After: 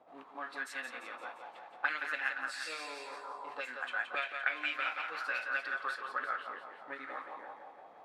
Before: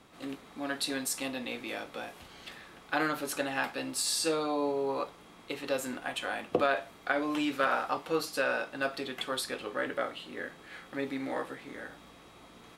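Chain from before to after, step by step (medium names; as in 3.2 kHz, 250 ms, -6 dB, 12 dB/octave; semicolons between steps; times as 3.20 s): granular stretch 0.63×, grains 195 ms; thinning echo 173 ms, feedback 62%, high-pass 350 Hz, level -6 dB; auto-wah 670–2300 Hz, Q 3.2, up, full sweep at -27 dBFS; trim +5.5 dB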